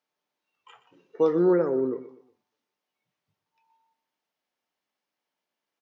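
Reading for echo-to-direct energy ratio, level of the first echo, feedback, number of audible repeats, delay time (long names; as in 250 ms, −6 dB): −14.5 dB, −15.0 dB, 35%, 3, 122 ms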